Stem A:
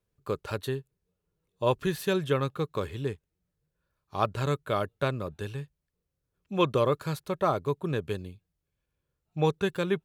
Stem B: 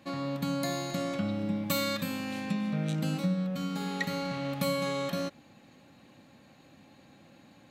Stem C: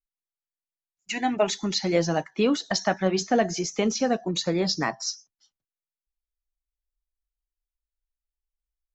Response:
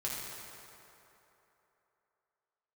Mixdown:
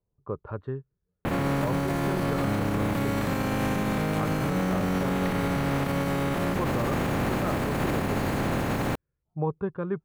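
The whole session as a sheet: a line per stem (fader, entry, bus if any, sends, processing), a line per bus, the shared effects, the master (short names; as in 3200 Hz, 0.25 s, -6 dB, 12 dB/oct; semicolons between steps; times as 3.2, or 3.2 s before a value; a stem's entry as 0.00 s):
-10.0 dB, 0.00 s, no bus, no send, LFO low-pass saw up 0.65 Hz 870–2100 Hz
+2.0 dB, 1.25 s, bus A, send -18.5 dB, spectral contrast lowered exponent 0.27; fast leveller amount 100%
off
bus A: 0.0 dB, LPF 1800 Hz 12 dB/oct; limiter -21 dBFS, peak gain reduction 5.5 dB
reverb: on, RT60 3.3 s, pre-delay 4 ms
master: low shelf 490 Hz +11 dB; limiter -18 dBFS, peak gain reduction 7.5 dB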